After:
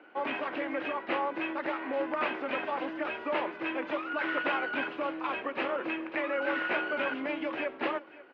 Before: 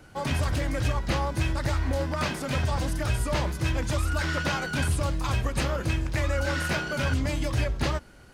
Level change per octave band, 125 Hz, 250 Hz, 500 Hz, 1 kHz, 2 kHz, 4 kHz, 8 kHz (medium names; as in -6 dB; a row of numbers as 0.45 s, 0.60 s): -34.0 dB, -3.5 dB, -0.5 dB, 0.0 dB, -0.5 dB, -8.0 dB, under -35 dB